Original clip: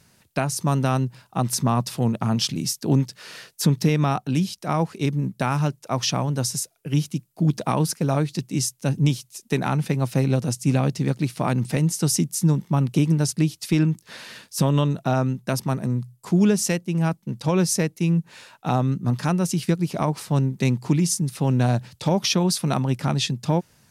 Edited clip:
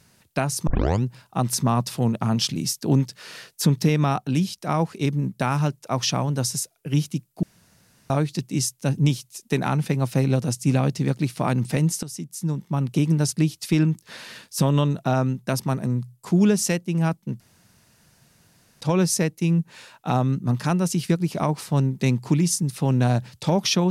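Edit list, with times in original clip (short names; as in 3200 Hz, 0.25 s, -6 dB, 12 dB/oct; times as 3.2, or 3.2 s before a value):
0.67 tape start 0.37 s
7.43–8.1 room tone
12.03–13.2 fade in, from -17.5 dB
17.4 insert room tone 1.41 s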